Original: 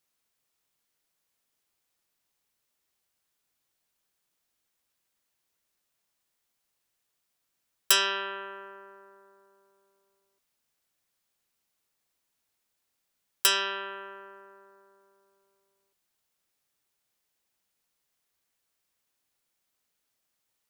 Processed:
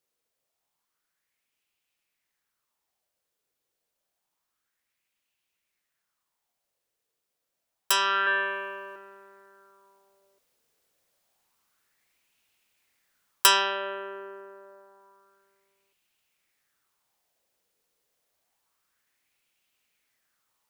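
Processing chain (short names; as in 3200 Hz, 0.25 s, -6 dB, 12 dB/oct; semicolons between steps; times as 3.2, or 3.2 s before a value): 8.26–8.96 comb 6.9 ms, depth 96%; vocal rider within 5 dB 0.5 s; LFO bell 0.28 Hz 450–2700 Hz +11 dB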